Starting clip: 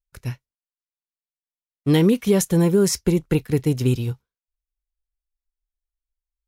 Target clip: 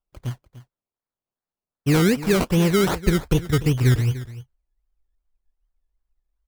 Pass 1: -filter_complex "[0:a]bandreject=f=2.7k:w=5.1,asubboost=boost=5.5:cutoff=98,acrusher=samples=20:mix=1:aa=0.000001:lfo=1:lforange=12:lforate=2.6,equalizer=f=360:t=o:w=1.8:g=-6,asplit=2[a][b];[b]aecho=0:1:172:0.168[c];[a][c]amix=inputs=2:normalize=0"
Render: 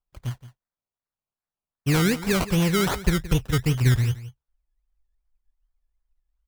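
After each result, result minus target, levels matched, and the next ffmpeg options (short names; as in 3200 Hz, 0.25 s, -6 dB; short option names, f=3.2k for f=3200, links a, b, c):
echo 0.123 s early; 500 Hz band -3.0 dB
-filter_complex "[0:a]bandreject=f=2.7k:w=5.1,asubboost=boost=5.5:cutoff=98,acrusher=samples=20:mix=1:aa=0.000001:lfo=1:lforange=12:lforate=2.6,equalizer=f=360:t=o:w=1.8:g=-6,asplit=2[a][b];[b]aecho=0:1:295:0.168[c];[a][c]amix=inputs=2:normalize=0"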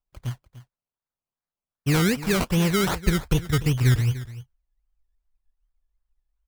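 500 Hz band -3.0 dB
-filter_complex "[0:a]bandreject=f=2.7k:w=5.1,asubboost=boost=5.5:cutoff=98,acrusher=samples=20:mix=1:aa=0.000001:lfo=1:lforange=12:lforate=2.6,asplit=2[a][b];[b]aecho=0:1:295:0.168[c];[a][c]amix=inputs=2:normalize=0"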